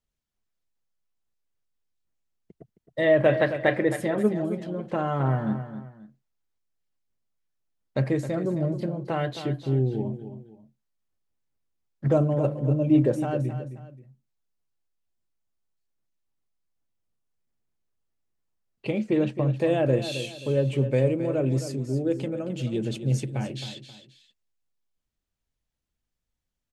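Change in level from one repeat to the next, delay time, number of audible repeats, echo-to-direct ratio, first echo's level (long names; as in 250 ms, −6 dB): −9.5 dB, 266 ms, 2, −10.5 dB, −11.0 dB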